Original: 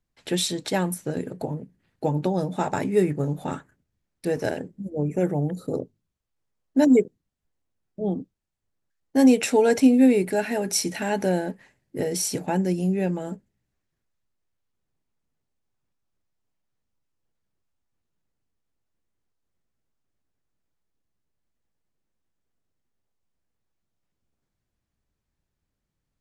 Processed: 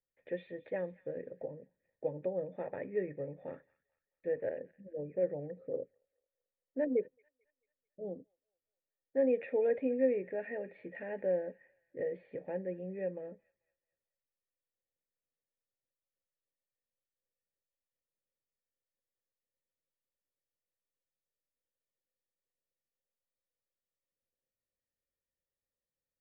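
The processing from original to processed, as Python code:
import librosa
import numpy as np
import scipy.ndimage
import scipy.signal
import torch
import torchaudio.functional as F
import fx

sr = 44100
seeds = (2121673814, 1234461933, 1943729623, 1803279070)

y = fx.formant_cascade(x, sr, vowel='e')
y = fx.notch(y, sr, hz=2600.0, q=22.0)
y = fx.echo_wet_highpass(y, sr, ms=220, feedback_pct=40, hz=1900.0, wet_db=-17)
y = y * librosa.db_to_amplitude(-2.0)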